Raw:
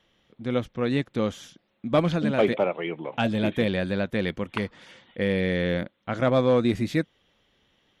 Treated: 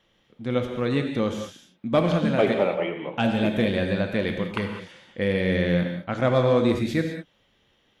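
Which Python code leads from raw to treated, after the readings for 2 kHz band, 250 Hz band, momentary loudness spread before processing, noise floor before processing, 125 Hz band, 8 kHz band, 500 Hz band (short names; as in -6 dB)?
+1.5 dB, +1.5 dB, 10 LU, -71 dBFS, +2.0 dB, n/a, +1.5 dB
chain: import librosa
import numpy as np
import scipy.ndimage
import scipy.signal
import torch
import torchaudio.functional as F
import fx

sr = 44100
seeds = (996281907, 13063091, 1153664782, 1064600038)

y = fx.rev_gated(x, sr, seeds[0], gate_ms=230, shape='flat', drr_db=4.0)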